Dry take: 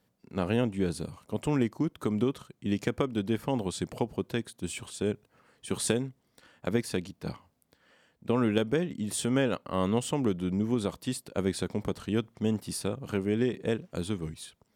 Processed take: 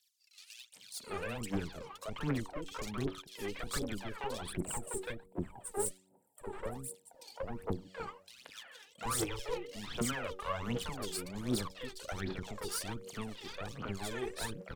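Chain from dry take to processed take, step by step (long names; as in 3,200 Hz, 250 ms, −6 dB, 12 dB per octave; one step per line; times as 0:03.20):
0:04.95–0:05.74: mu-law and A-law mismatch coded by A
meter weighting curve A
0:04.46–0:07.12: gain on a spectral selection 980–7,300 Hz −29 dB
hum removal 94.2 Hz, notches 6
in parallel at +1.5 dB: downward compressor, threshold −50 dBFS, peak gain reduction 22.5 dB
on the sum: soft clipping −24 dBFS, distortion −15 dB
0:08.34–0:08.99: phaser with its sweep stopped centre 1,100 Hz, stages 8
asymmetric clip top −45.5 dBFS
three-band delay without the direct sound highs, mids, lows 730/760 ms, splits 480/3,300 Hz
phase shifter 1.3 Hz, delay 2.6 ms, feedback 74%
level −1 dB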